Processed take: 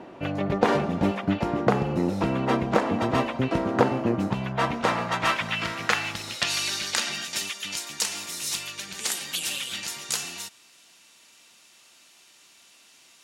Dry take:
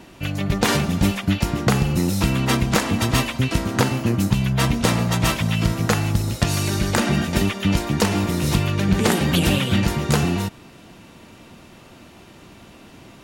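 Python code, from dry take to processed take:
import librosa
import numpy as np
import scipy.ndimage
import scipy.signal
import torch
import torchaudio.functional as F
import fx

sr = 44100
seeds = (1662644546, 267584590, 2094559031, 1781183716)

y = fx.rider(x, sr, range_db=3, speed_s=0.5)
y = fx.filter_sweep_bandpass(y, sr, from_hz=590.0, to_hz=7300.0, start_s=4.07, end_s=7.6, q=0.91)
y = y * librosa.db_to_amplitude(3.0)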